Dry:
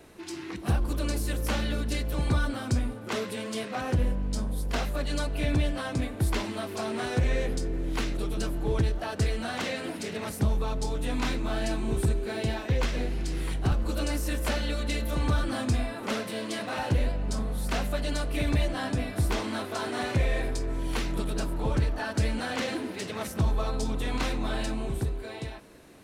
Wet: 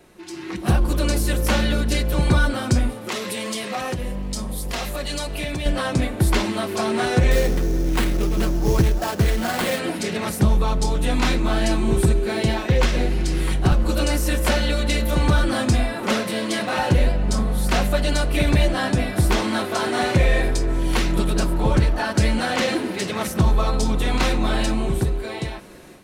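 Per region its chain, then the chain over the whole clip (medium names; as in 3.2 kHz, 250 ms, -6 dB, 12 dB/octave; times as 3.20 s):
2.89–5.66 s: tilt EQ +1.5 dB/octave + band-stop 1.5 kHz, Q 11 + compression 3:1, threshold -33 dBFS
7.31–9.79 s: distance through air 80 m + sample-rate reducer 6 kHz, jitter 20%
whole clip: comb 5.5 ms, depth 31%; level rider gain up to 9 dB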